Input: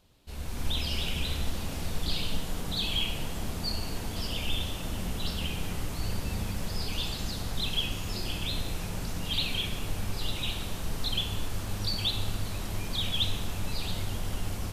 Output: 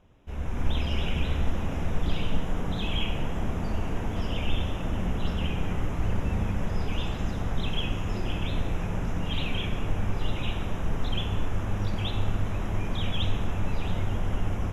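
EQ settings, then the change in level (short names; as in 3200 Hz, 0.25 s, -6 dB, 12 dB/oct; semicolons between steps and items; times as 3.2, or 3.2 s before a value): running mean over 10 samples; +5.5 dB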